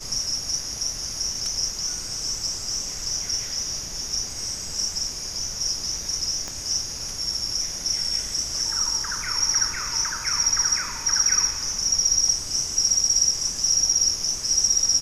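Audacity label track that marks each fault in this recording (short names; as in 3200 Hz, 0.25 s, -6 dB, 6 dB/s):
6.480000	6.480000	pop -18 dBFS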